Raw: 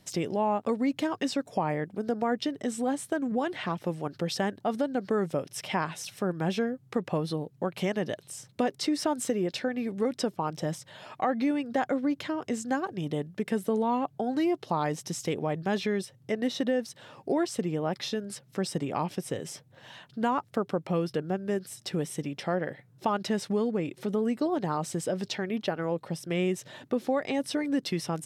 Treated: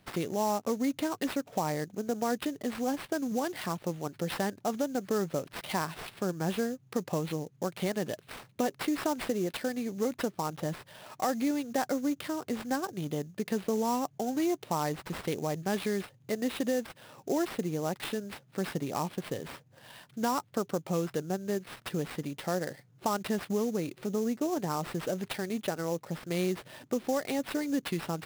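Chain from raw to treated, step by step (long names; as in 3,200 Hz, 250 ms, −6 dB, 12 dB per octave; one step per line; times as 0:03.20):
0:24.06–0:24.57: high-frequency loss of the air 180 metres
sample-rate reduction 6,600 Hz, jitter 20%
level −2.5 dB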